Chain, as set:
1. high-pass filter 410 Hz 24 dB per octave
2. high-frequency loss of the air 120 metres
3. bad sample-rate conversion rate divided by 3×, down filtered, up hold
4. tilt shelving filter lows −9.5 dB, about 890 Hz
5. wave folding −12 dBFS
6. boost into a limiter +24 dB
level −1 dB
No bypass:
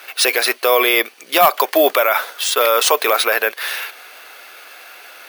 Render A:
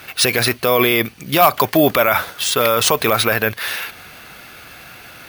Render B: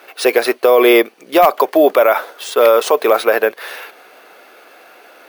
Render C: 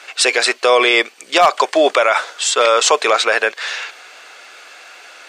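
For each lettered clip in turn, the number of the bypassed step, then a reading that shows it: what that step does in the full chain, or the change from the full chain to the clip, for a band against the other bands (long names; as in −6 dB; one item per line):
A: 1, 250 Hz band +7.5 dB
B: 4, 250 Hz band +11.5 dB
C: 3, change in integrated loudness +1.0 LU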